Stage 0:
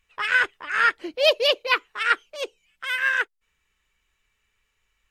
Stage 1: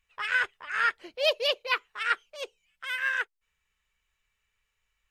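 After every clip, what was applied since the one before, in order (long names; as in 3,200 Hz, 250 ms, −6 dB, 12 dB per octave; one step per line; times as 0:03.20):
parametric band 300 Hz −12 dB 0.56 octaves
level −6 dB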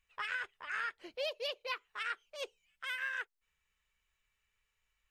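downward compressor 12 to 1, threshold −31 dBFS, peak gain reduction 13 dB
level −3.5 dB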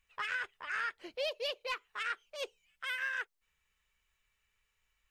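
soft clipping −27.5 dBFS, distortion −23 dB
level +2.5 dB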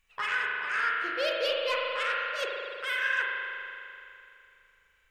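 mains-hum notches 50/100 Hz
spring reverb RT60 2.7 s, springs 39 ms, chirp 50 ms, DRR −2.5 dB
level +4.5 dB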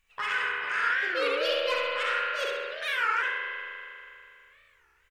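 repeating echo 66 ms, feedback 41%, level −4 dB
wow of a warped record 33 1/3 rpm, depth 250 cents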